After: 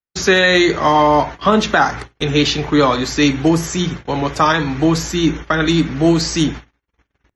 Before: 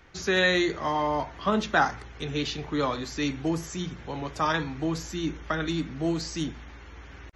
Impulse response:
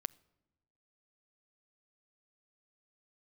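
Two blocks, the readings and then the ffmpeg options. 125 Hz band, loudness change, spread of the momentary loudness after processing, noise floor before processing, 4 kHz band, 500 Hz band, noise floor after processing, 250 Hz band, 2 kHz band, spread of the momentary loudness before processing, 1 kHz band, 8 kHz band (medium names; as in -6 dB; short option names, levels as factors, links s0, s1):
+13.5 dB, +12.5 dB, 8 LU, -46 dBFS, +13.0 dB, +13.0 dB, -74 dBFS, +13.5 dB, +11.0 dB, 12 LU, +12.5 dB, +14.5 dB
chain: -filter_complex "[0:a]agate=range=0.00126:threshold=0.0112:ratio=16:detection=peak,alimiter=limit=0.133:level=0:latency=1:release=159,asplit=2[s0][s1];[1:a]atrim=start_sample=2205,afade=t=out:st=0.14:d=0.01,atrim=end_sample=6615,lowshelf=f=130:g=-4.5[s2];[s1][s2]afir=irnorm=-1:irlink=0,volume=5.62[s3];[s0][s3]amix=inputs=2:normalize=0"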